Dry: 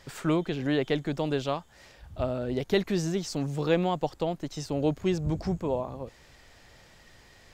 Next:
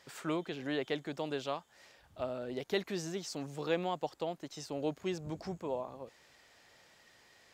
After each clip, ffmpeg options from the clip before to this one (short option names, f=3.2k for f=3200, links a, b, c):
-af "highpass=f=380:p=1,volume=-5.5dB"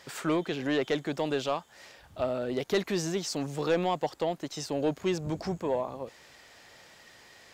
-af "asoftclip=type=tanh:threshold=-26.5dB,volume=8.5dB"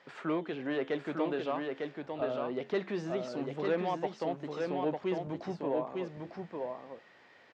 -filter_complex "[0:a]flanger=delay=3.9:depth=9.3:regen=-79:speed=0.5:shape=sinusoidal,highpass=160,lowpass=2.5k,asplit=2[a][b];[b]aecho=0:1:901:0.631[c];[a][c]amix=inputs=2:normalize=0"